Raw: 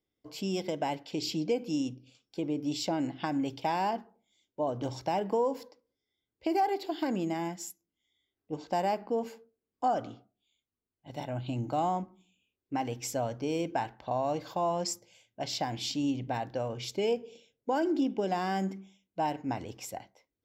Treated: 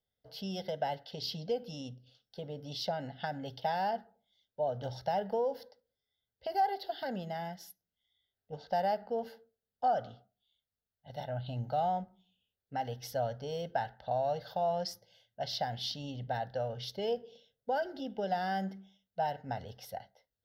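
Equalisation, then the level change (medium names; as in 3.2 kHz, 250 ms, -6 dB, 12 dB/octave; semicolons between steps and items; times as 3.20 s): static phaser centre 1.6 kHz, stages 8; 0.0 dB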